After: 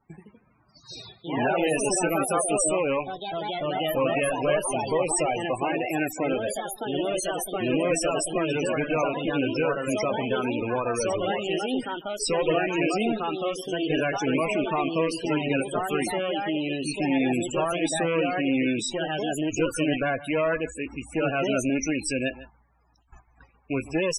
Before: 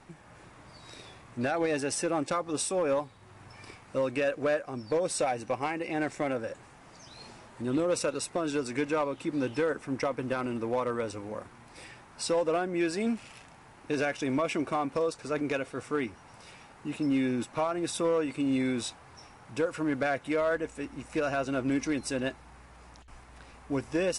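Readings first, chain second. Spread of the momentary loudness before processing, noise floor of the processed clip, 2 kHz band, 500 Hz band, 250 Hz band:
19 LU, -61 dBFS, +6.0 dB, +4.5 dB, +4.5 dB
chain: rattling part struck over -40 dBFS, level -29 dBFS; gate -48 dBFS, range -18 dB; high shelf 3300 Hz +11.5 dB; one-sided clip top -30.5 dBFS; echoes that change speed 91 ms, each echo +2 st, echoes 3; doubler 19 ms -14 dB; echo 0.15 s -17.5 dB; loudest bins only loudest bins 32; gain +4 dB

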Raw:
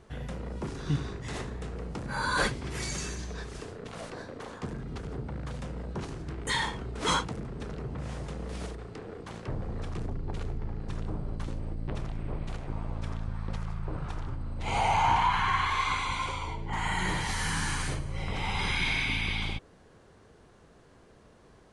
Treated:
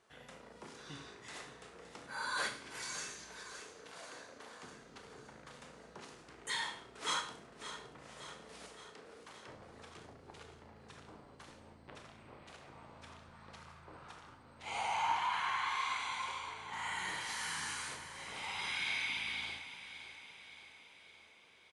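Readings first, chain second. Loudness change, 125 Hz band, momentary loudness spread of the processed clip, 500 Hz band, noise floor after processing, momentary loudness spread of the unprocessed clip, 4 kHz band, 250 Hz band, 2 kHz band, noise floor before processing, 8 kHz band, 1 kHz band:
-7.0 dB, -25.0 dB, 20 LU, -13.0 dB, -59 dBFS, 12 LU, -6.0 dB, -19.0 dB, -7.0 dB, -57 dBFS, -5.5 dB, -9.0 dB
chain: HPF 1100 Hz 6 dB/oct; feedback echo 0.568 s, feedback 58%, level -12 dB; Schroeder reverb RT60 0.47 s, combs from 25 ms, DRR 6 dB; gain -7 dB

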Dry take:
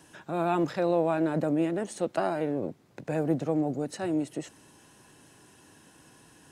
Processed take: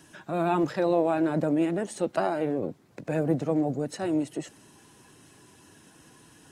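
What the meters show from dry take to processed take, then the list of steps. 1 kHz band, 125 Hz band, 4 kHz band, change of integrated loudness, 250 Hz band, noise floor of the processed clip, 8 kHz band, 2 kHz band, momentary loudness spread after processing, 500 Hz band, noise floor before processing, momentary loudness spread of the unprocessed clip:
+1.5 dB, +1.5 dB, +1.5 dB, +1.5 dB, +2.0 dB, -57 dBFS, +1.0 dB, +1.5 dB, 10 LU, +1.5 dB, -58 dBFS, 10 LU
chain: bin magnitudes rounded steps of 15 dB; gain +2 dB

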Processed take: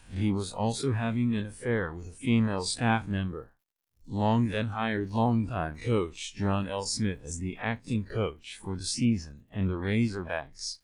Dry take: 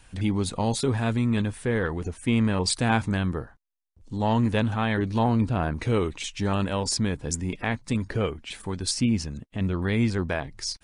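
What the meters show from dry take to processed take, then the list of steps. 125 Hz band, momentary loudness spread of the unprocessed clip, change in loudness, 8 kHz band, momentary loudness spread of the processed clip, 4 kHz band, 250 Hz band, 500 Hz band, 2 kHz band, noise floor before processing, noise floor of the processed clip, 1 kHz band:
-4.0 dB, 7 LU, -3.5 dB, -5.0 dB, 9 LU, -5.0 dB, -3.5 dB, -3.5 dB, -3.5 dB, -57 dBFS, -66 dBFS, -3.0 dB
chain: time blur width 85 ms; crackle 120/s -56 dBFS; reverb removal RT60 1.6 s

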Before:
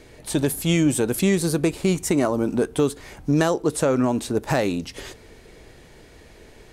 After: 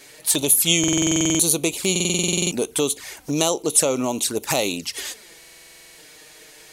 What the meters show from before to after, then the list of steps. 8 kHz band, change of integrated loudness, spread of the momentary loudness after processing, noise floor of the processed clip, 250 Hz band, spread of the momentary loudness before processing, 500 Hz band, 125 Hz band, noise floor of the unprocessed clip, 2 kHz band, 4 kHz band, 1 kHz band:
+12.5 dB, +2.5 dB, 12 LU, -47 dBFS, -2.5 dB, 8 LU, -2.0 dB, -4.5 dB, -48 dBFS, +2.0 dB, +10.5 dB, -1.5 dB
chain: envelope flanger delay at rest 8 ms, full sweep at -19.5 dBFS; tilt +4 dB/oct; stuck buffer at 0.79/1.91/5.38, samples 2048, times 12; gain +4 dB

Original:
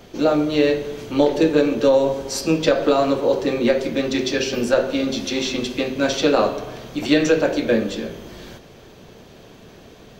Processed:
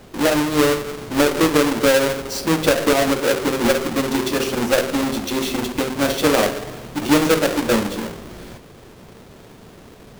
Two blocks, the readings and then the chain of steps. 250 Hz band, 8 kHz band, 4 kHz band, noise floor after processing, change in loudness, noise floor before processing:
+1.0 dB, +6.0 dB, +2.5 dB, -44 dBFS, +1.0 dB, -45 dBFS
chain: half-waves squared off; gain -3.5 dB

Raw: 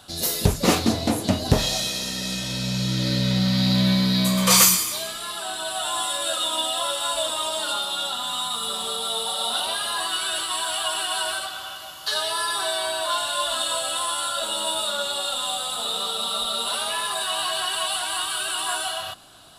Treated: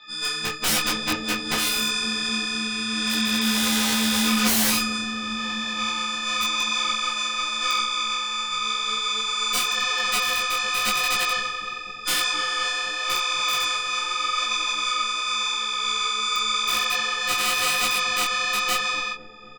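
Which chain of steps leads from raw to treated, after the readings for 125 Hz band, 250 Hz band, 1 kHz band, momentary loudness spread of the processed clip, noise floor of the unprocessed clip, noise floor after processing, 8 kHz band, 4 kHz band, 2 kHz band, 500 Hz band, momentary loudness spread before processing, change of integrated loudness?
-15.0 dB, -3.0 dB, +1.5 dB, 5 LU, -35 dBFS, -33 dBFS, -2.0 dB, +1.0 dB, +6.5 dB, -8.0 dB, 7 LU, +0.5 dB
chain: frequency quantiser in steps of 6 st; elliptic band-pass 200–4000 Hz, stop band 40 dB; band shelf 550 Hz -9 dB; notch 3100 Hz, Q 13; comb 7.3 ms, depth 79%; wrapped overs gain 13 dB; added harmonics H 2 -6 dB, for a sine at -13 dBFS; on a send: dark delay 0.25 s, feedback 76%, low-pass 450 Hz, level -7 dB; on the sum: detuned doubles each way 31 cents

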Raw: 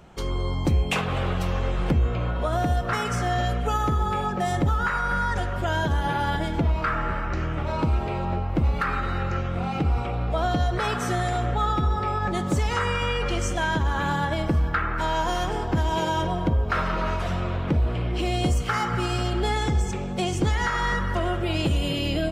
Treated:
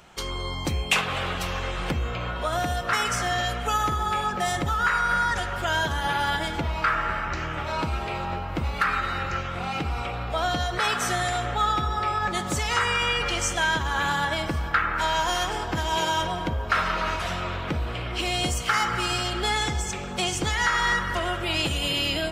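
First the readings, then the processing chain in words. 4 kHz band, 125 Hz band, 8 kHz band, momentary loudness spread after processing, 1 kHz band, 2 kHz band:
+6.0 dB, -6.5 dB, +7.0 dB, 7 LU, +1.0 dB, +4.0 dB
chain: tilt shelf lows -7 dB, about 850 Hz; dark delay 0.672 s, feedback 74%, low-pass 1200 Hz, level -16 dB

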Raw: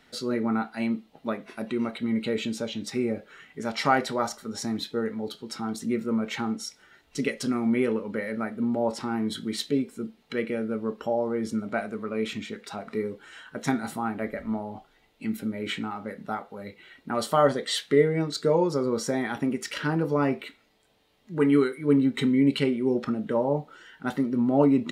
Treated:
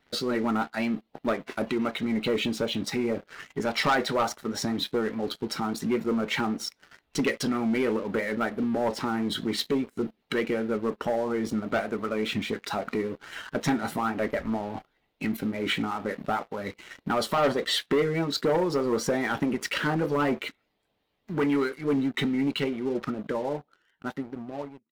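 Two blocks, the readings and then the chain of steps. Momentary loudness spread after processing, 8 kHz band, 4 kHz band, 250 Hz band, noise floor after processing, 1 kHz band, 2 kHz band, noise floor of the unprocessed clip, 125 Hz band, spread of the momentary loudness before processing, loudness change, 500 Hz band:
9 LU, 0.0 dB, +3.5 dB, -2.0 dB, -74 dBFS, +0.5 dB, +3.0 dB, -63 dBFS, -2.0 dB, 13 LU, -1.0 dB, -1.0 dB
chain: ending faded out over 3.77 s; in parallel at +2 dB: compressor 6:1, threshold -38 dBFS, peak gain reduction 21.5 dB; on the sum: vibrato 4.9 Hz 39 cents; harmonic-percussive split harmonic -8 dB; bell 8100 Hz -9.5 dB 1.3 oct; sample leveller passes 3; gain -6.5 dB

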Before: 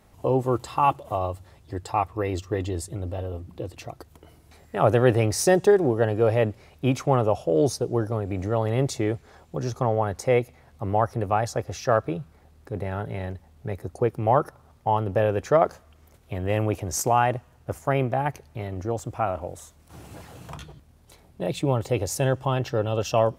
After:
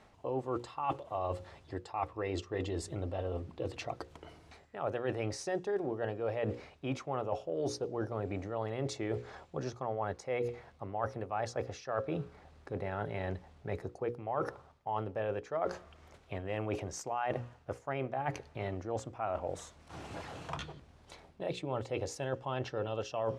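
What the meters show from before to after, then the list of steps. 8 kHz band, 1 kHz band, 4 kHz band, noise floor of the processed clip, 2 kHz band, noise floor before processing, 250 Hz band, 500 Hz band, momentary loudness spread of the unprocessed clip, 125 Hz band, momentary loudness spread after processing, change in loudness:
-14.5 dB, -12.0 dB, -9.5 dB, -61 dBFS, -10.0 dB, -56 dBFS, -12.0 dB, -12.0 dB, 15 LU, -14.0 dB, 9 LU, -13.0 dB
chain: low shelf 260 Hz -8.5 dB; notches 60/120/180/240/300/360/420/480/540 Hz; reverse; compressor 6:1, threshold -36 dBFS, peak gain reduction 19.5 dB; reverse; air absorption 94 m; gain +3.5 dB

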